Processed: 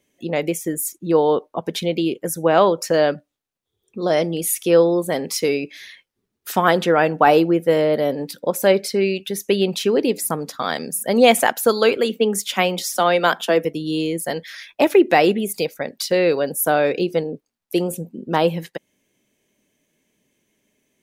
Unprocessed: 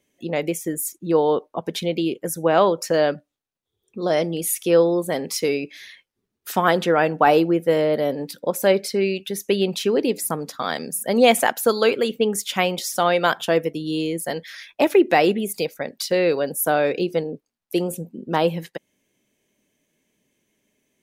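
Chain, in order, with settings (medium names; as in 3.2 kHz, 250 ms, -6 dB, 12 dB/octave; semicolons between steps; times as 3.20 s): 11.97–13.65 s: steep high-pass 170 Hz 96 dB/octave; trim +2 dB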